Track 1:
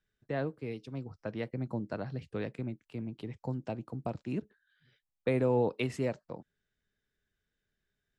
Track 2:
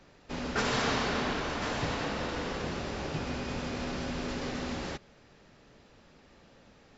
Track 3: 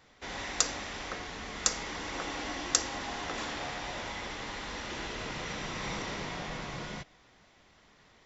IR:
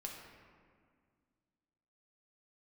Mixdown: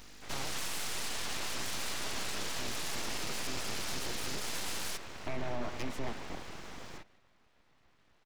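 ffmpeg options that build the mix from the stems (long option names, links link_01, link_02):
-filter_complex "[0:a]asubboost=boost=7:cutoff=120,volume=-1dB,asplit=2[link_01][link_02];[link_02]volume=-16dB[link_03];[1:a]aeval=exprs='val(0)+0.00316*(sin(2*PI*50*n/s)+sin(2*PI*2*50*n/s)/2+sin(2*PI*3*50*n/s)/3+sin(2*PI*4*50*n/s)/4+sin(2*PI*5*50*n/s)/5)':channel_layout=same,crystalizer=i=7.5:c=0,volume=-1.5dB[link_04];[2:a]aemphasis=mode=reproduction:type=75kf,volume=-5dB,asplit=2[link_05][link_06];[link_06]volume=-20dB[link_07];[link_01][link_04]amix=inputs=2:normalize=0,acompressor=threshold=-29dB:ratio=6,volume=0dB[link_08];[link_03][link_07]amix=inputs=2:normalize=0,aecho=0:1:160:1[link_09];[link_05][link_08][link_09]amix=inputs=3:normalize=0,aeval=exprs='abs(val(0))':channel_layout=same,alimiter=level_in=1.5dB:limit=-24dB:level=0:latency=1:release=15,volume=-1.5dB"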